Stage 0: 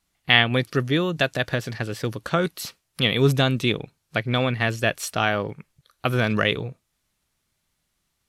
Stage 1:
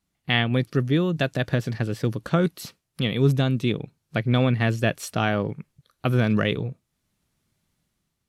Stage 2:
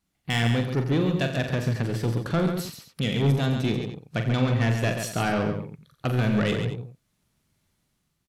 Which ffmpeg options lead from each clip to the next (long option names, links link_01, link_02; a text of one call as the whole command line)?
ffmpeg -i in.wav -af "equalizer=frequency=170:width=0.43:gain=9.5,dynaudnorm=framelen=110:gausssize=9:maxgain=5dB,volume=-7dB" out.wav
ffmpeg -i in.wav -af "asoftclip=type=tanh:threshold=-18.5dB,aecho=1:1:43|87|136|225:0.422|0.251|0.447|0.178" out.wav